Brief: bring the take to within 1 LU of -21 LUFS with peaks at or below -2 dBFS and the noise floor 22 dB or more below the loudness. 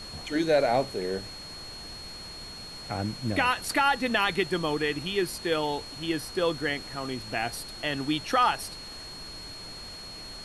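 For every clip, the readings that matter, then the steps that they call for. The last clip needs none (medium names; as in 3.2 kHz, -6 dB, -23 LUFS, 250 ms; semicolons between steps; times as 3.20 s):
steady tone 4.3 kHz; tone level -41 dBFS; noise floor -42 dBFS; noise floor target -50 dBFS; loudness -28.0 LUFS; peak level -12.0 dBFS; loudness target -21.0 LUFS
-> band-stop 4.3 kHz, Q 30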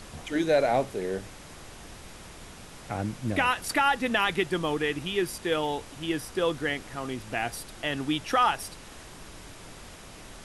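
steady tone not found; noise floor -46 dBFS; noise floor target -50 dBFS
-> noise print and reduce 6 dB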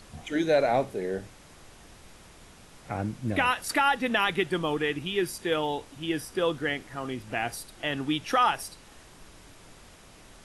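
noise floor -52 dBFS; loudness -28.0 LUFS; peak level -12.5 dBFS; loudness target -21.0 LUFS
-> trim +7 dB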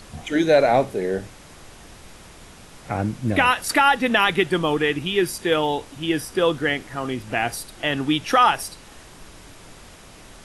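loudness -21.0 LUFS; peak level -5.5 dBFS; noise floor -45 dBFS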